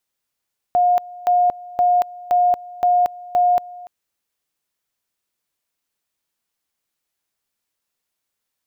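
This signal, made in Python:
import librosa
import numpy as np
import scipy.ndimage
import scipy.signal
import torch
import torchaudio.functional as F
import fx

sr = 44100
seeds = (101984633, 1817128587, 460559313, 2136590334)

y = fx.two_level_tone(sr, hz=714.0, level_db=-12.0, drop_db=21.0, high_s=0.23, low_s=0.29, rounds=6)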